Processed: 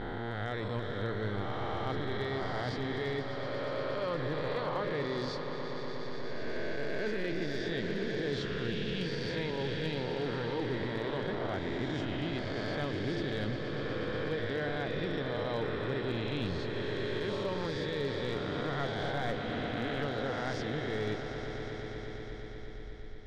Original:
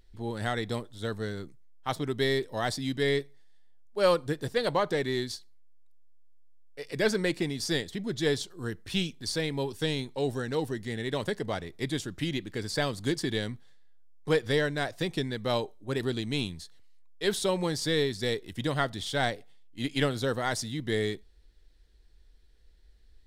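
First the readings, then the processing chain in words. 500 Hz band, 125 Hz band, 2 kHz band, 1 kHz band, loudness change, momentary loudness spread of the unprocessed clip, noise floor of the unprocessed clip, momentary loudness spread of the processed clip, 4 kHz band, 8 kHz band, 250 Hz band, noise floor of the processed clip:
−3.5 dB, −2.0 dB, −3.0 dB, −2.5 dB, −4.5 dB, 9 LU, −57 dBFS, 5 LU, −6.5 dB, below −15 dB, −3.5 dB, −40 dBFS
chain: peak hold with a rise ahead of every peak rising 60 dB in 1.72 s
low-shelf EQ 94 Hz +7.5 dB
reversed playback
downward compressor 8 to 1, threshold −32 dBFS, peak gain reduction 15 dB
reversed playback
Bessel low-pass filter 3,100 Hz, order 4
echo that builds up and dies away 120 ms, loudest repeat 5, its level −12 dB
gain into a clipping stage and back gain 25.5 dB

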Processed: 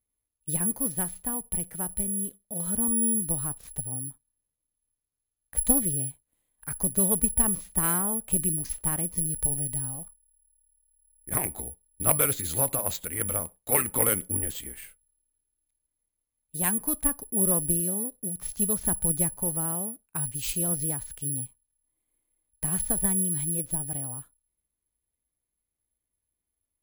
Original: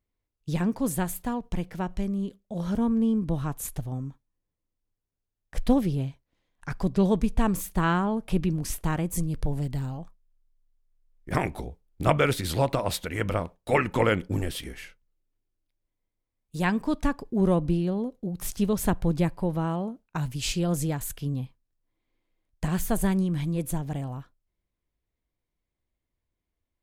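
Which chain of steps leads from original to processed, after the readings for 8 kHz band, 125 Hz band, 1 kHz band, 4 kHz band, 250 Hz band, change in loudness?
+15.0 dB, −7.0 dB, −7.0 dB, −6.5 dB, −7.0 dB, +2.0 dB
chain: bad sample-rate conversion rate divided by 4×, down filtered, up zero stuff
harmonic generator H 6 −19 dB, 8 −30 dB, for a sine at 7 dBFS
level −6.5 dB

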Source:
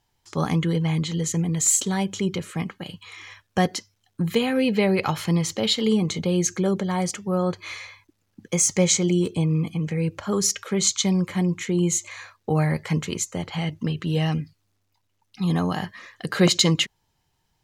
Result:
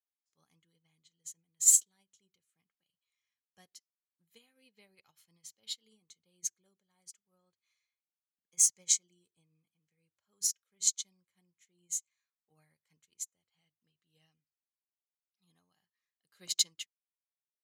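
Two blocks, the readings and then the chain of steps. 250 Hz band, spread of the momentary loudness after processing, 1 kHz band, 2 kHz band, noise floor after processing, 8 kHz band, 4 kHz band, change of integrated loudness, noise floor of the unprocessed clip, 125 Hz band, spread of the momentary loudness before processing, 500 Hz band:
below −40 dB, 22 LU, below −40 dB, below −25 dB, below −85 dBFS, −5.0 dB, −13.5 dB, −5.5 dB, −72 dBFS, below −40 dB, 13 LU, below −40 dB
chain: first-order pre-emphasis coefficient 0.9
expander for the loud parts 2.5 to 1, over −43 dBFS

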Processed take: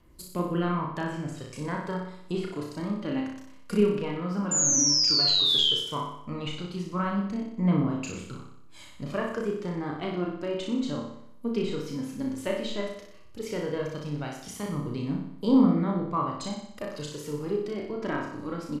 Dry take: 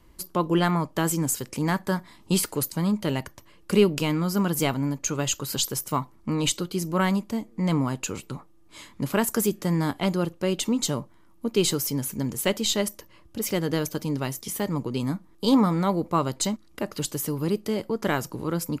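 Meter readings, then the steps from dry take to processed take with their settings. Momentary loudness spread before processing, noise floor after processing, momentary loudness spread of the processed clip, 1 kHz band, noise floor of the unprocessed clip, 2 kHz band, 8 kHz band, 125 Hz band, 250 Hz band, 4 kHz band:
8 LU, −46 dBFS, 17 LU, −4.5 dB, −54 dBFS, −6.0 dB, 0.0 dB, −5.0 dB, −3.0 dB, +5.0 dB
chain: treble cut that deepens with the level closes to 2,000 Hz, closed at −20 dBFS
healed spectral selection 0:04.52–0:04.79, 240–3,700 Hz both
notch filter 860 Hz, Q 19
phase shifter 0.13 Hz, delay 4.4 ms, feedback 43%
sound drawn into the spectrogram fall, 0:04.51–0:05.73, 3,000–7,200 Hz −18 dBFS
double-tracking delay 34 ms −3.5 dB
flutter between parallel walls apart 10.4 metres, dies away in 0.71 s
level −8 dB

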